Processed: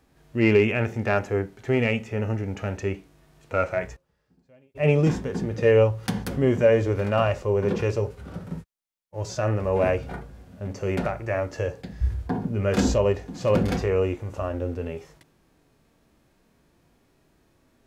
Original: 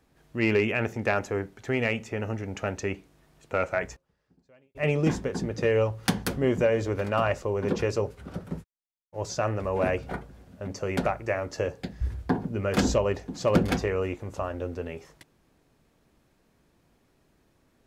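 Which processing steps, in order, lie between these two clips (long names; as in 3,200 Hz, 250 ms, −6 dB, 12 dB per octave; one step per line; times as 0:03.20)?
harmonic and percussive parts rebalanced percussive −12 dB
level +6.5 dB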